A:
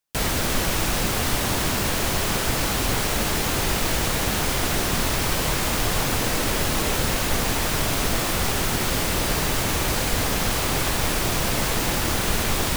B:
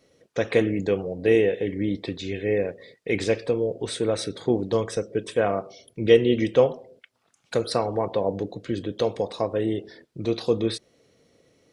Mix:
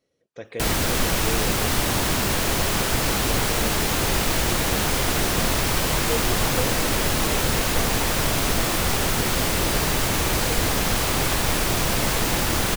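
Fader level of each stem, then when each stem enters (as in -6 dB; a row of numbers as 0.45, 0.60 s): +1.0, -13.0 dB; 0.45, 0.00 s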